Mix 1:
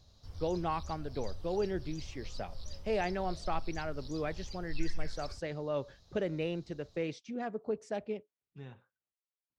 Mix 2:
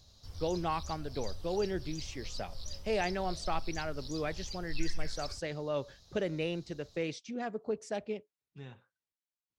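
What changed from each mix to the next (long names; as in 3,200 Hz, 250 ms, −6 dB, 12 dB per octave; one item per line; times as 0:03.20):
master: add high-shelf EQ 3,200 Hz +8.5 dB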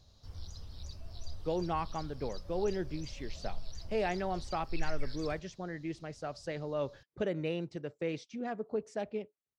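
speech: entry +1.05 s
master: add high-shelf EQ 3,200 Hz −8.5 dB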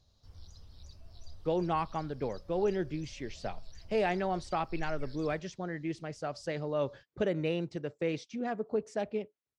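speech +3.0 dB
background −6.5 dB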